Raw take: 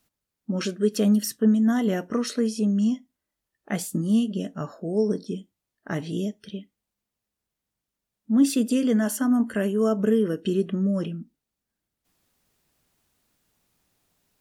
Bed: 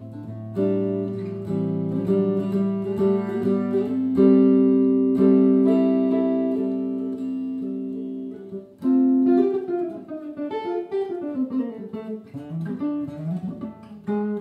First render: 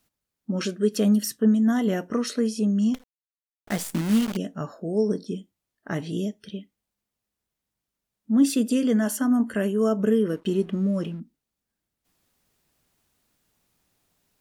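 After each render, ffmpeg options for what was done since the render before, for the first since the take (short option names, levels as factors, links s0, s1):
-filter_complex "[0:a]asettb=1/sr,asplit=3[s0][s1][s2];[s0]atrim=end=2.944[s3];[s1]atrim=start=2.94:end=4.37,asetpts=PTS-STARTPTS,afade=t=in:d=0.004:c=qsin,afade=t=out:st=1.426:d=0.004:c=qsin,acrusher=bits=6:dc=4:mix=0:aa=0.000001[s4];[s2]atrim=start=4.366[s5];[s3][s4]acrossfade=d=0.004:c1=hsin:c2=qsin[s6];[s6][s5]acrossfade=d=0.004:c1=qsin:c2=hsin,asettb=1/sr,asplit=3[s7][s8][s9];[s7]atrim=end=10.294[s10];[s8]atrim=start=10.29:end=11.2,asetpts=PTS-STARTPTS,afade=t=in:d=0.004:c=qsin,afade=t=out:st=0.906:d=0.004:c=qsin,aeval=exprs='sgn(val(0))*max(abs(val(0))-0.00251,0)':c=same[s11];[s9]atrim=start=11.196[s12];[s10][s11]acrossfade=d=0.004:c1=hsin:c2=qsin[s13];[s13][s12]acrossfade=d=0.004:c1=qsin:c2=hsin"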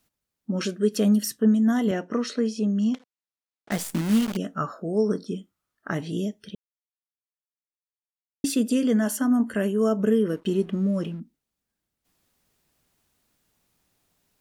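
-filter_complex "[0:a]asettb=1/sr,asplit=3[s0][s1][s2];[s0]atrim=end=1.914[s3];[s1]atrim=start=1.91:end=3.72,asetpts=PTS-STARTPTS,afade=t=in:d=0.004:c=qsin,afade=t=out:st=1.806:d=0.004:c=qsin,highpass=160,lowpass=5900[s4];[s2]atrim=start=3.716[s5];[s3][s4]acrossfade=d=0.004:c1=hsin:c2=qsin[s6];[s6][s5]acrossfade=d=0.004:c1=qsin:c2=hsin,asettb=1/sr,asplit=3[s7][s8][s9];[s7]atrim=end=4.424[s10];[s8]atrim=start=4.42:end=5.91,asetpts=PTS-STARTPTS,afade=t=in:d=0.004:c=qsin,afade=t=out:st=1.486:d=0.004:c=qsin,equalizer=f=1300:t=o:w=0.48:g=13.5[s11];[s9]atrim=start=5.906[s12];[s10][s11]acrossfade=d=0.004:c1=hsin:c2=qsin[s13];[s13][s12]acrossfade=d=0.004:c1=qsin:c2=hsin,asplit=3[s14][s15][s16];[s14]atrim=end=6.55,asetpts=PTS-STARTPTS,afade=t=out:st=6.546:d=0.004:c=hsin[s17];[s15]atrim=start=6.55:end=8.44,asetpts=PTS-STARTPTS,volume=0[s18];[s16]atrim=start=8.44,asetpts=PTS-STARTPTS,afade=t=in:d=0.004:c=hsin[s19];[s17][s18][s19]concat=n=3:v=0:a=1"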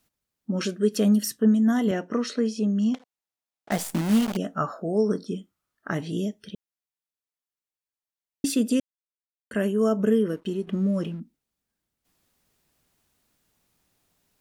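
-filter_complex "[0:a]asettb=1/sr,asplit=3[s0][s1][s2];[s0]atrim=end=2.944[s3];[s1]atrim=start=2.94:end=4.97,asetpts=PTS-STARTPTS,afade=t=in:d=0.004:c=qsin,afade=t=out:st=2.026:d=0.004:c=qsin,equalizer=f=730:t=o:w=0.77:g=6[s4];[s2]atrim=start=4.966[s5];[s3][s4]acrossfade=d=0.004:c1=hsin:c2=qsin[s6];[s6][s5]acrossfade=d=0.004:c1=qsin:c2=hsin,asplit=4[s7][s8][s9][s10];[s7]atrim=end=8.8,asetpts=PTS-STARTPTS,afade=t=out:st=8.796:d=0.004:c=hsin[s11];[s8]atrim=start=8.8:end=9.51,asetpts=PTS-STARTPTS,volume=0[s12];[s9]atrim=start=9.51:end=10.67,asetpts=PTS-STARTPTS,afade=t=in:d=0.004:c=hsin,afade=t=out:st=0.65:d=0.51:silence=0.421697[s13];[s10]atrim=start=10.67,asetpts=PTS-STARTPTS,afade=t=in:d=0.004:c=hsin:silence=0.421697[s14];[s11][s12][s13][s14]concat=n=4:v=0:a=1"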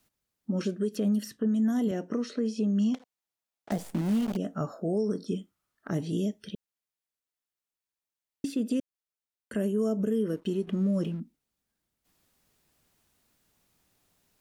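-filter_complex "[0:a]acrossover=split=640|4100[s0][s1][s2];[s0]acompressor=threshold=0.0891:ratio=4[s3];[s1]acompressor=threshold=0.00562:ratio=4[s4];[s2]acompressor=threshold=0.00398:ratio=4[s5];[s3][s4][s5]amix=inputs=3:normalize=0,alimiter=limit=0.1:level=0:latency=1:release=185"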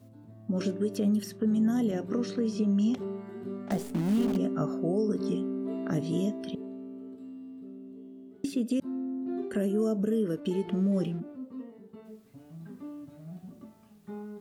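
-filter_complex "[1:a]volume=0.158[s0];[0:a][s0]amix=inputs=2:normalize=0"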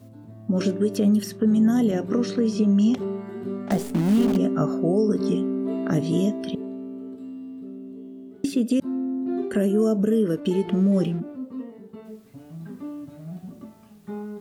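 -af "volume=2.24"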